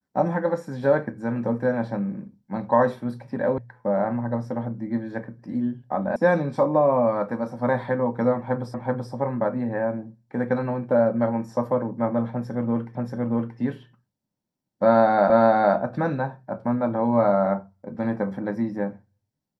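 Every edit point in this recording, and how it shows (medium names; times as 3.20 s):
3.58 s: sound stops dead
6.16 s: sound stops dead
8.74 s: repeat of the last 0.38 s
12.95 s: repeat of the last 0.63 s
15.30 s: repeat of the last 0.46 s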